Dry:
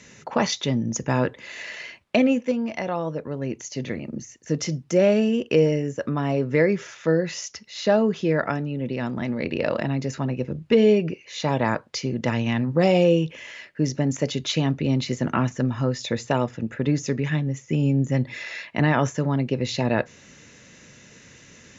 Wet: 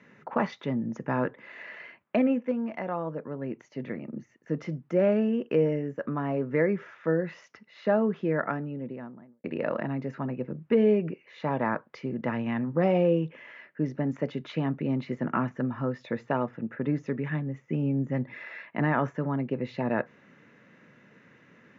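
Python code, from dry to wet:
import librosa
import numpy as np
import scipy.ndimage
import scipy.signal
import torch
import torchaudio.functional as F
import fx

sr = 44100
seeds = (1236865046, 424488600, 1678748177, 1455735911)

y = fx.studio_fade_out(x, sr, start_s=8.55, length_s=0.89)
y = scipy.signal.sosfilt(scipy.signal.cheby1(2, 1.0, [170.0, 1700.0], 'bandpass', fs=sr, output='sos'), y)
y = fx.peak_eq(y, sr, hz=1200.0, db=2.0, octaves=0.77)
y = y * 10.0 ** (-4.5 / 20.0)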